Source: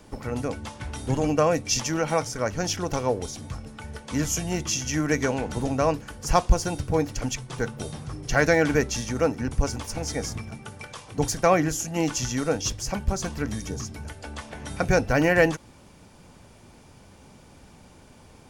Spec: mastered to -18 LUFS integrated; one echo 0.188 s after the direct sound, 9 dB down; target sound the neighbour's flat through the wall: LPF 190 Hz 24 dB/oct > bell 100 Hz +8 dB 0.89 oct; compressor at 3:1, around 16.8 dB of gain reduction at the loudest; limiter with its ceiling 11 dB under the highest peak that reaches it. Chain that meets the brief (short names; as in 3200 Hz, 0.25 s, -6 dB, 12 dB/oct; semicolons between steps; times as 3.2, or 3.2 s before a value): compressor 3:1, threshold -35 dBFS; limiter -26.5 dBFS; LPF 190 Hz 24 dB/oct; bell 100 Hz +8 dB 0.89 oct; echo 0.188 s -9 dB; gain +21.5 dB